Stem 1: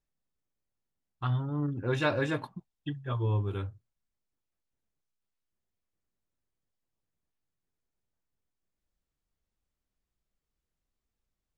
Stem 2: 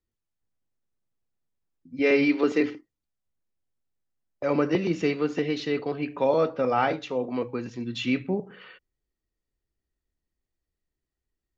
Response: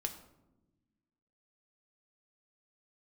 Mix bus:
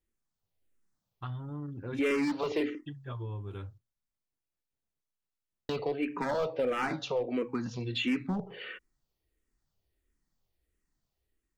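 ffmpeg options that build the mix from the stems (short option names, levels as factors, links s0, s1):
-filter_complex "[0:a]acompressor=threshold=0.0282:ratio=3,volume=0.596[s0];[1:a]dynaudnorm=f=230:g=5:m=1.88,asoftclip=type=hard:threshold=0.158,asplit=2[s1][s2];[s2]afreqshift=-1.5[s3];[s1][s3]amix=inputs=2:normalize=1,volume=1.19,asplit=3[s4][s5][s6];[s4]atrim=end=3.78,asetpts=PTS-STARTPTS,afade=t=out:st=3.776:d=0.004:c=hsin[s7];[s5]atrim=start=3.78:end=5.69,asetpts=PTS-STARTPTS,volume=0[s8];[s6]atrim=start=5.69,asetpts=PTS-STARTPTS,afade=t=in:d=0.004:c=hsin[s9];[s7][s8][s9]concat=n=3:v=0:a=1,asplit=2[s10][s11];[s11]apad=whole_len=510602[s12];[s0][s12]sidechaincompress=threshold=0.0501:ratio=8:attack=16:release=186[s13];[s13][s10]amix=inputs=2:normalize=0,acompressor=threshold=0.02:ratio=2"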